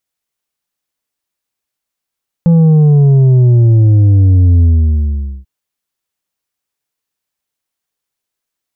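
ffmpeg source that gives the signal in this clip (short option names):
-f lavfi -i "aevalsrc='0.562*clip((2.99-t)/0.83,0,1)*tanh(1.88*sin(2*PI*170*2.99/log(65/170)*(exp(log(65/170)*t/2.99)-1)))/tanh(1.88)':d=2.99:s=44100"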